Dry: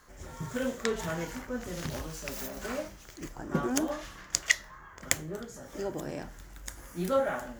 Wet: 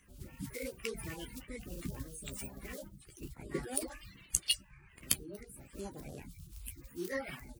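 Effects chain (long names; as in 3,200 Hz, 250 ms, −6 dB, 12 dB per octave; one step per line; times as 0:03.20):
spectral magnitudes quantised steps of 30 dB
guitar amp tone stack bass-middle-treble 6-0-2
formants moved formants +6 semitones
double-tracking delay 15 ms −9.5 dB
reverb reduction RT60 0.56 s
level +12.5 dB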